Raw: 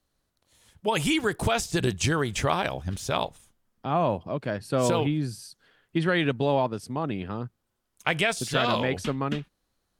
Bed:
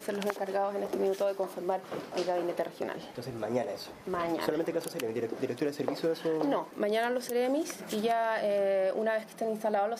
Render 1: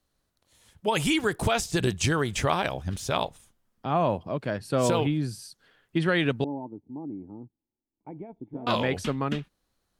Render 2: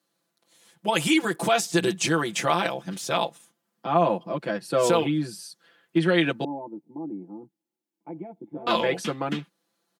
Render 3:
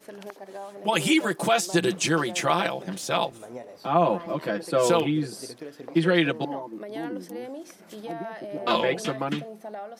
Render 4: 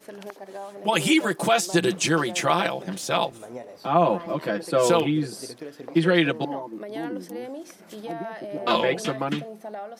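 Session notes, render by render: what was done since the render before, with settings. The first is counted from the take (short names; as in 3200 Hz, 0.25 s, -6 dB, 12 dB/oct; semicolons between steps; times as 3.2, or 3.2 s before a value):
6.44–8.67 vocal tract filter u
HPF 180 Hz 24 dB/oct; comb 5.9 ms, depth 94%
add bed -8.5 dB
gain +1.5 dB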